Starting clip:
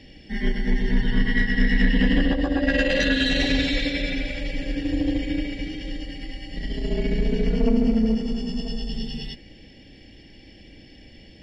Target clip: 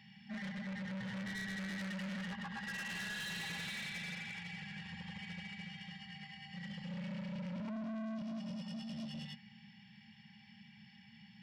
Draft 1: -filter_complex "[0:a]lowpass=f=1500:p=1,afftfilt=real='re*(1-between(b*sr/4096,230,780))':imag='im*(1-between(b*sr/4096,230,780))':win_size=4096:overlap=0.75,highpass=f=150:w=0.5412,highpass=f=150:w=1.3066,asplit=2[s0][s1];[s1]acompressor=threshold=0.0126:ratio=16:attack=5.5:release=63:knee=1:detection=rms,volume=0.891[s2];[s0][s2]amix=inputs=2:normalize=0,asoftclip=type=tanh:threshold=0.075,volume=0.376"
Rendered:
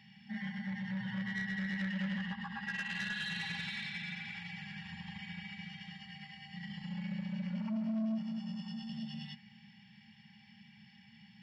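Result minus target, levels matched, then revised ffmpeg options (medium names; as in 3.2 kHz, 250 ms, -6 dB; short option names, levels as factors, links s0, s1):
compression: peak gain reduction +10 dB; saturation: distortion -9 dB
-filter_complex "[0:a]lowpass=f=1500:p=1,afftfilt=real='re*(1-between(b*sr/4096,230,780))':imag='im*(1-between(b*sr/4096,230,780))':win_size=4096:overlap=0.75,highpass=f=150:w=0.5412,highpass=f=150:w=1.3066,asplit=2[s0][s1];[s1]acompressor=threshold=0.0422:ratio=16:attack=5.5:release=63:knee=1:detection=rms,volume=0.891[s2];[s0][s2]amix=inputs=2:normalize=0,asoftclip=type=tanh:threshold=0.0266,volume=0.376"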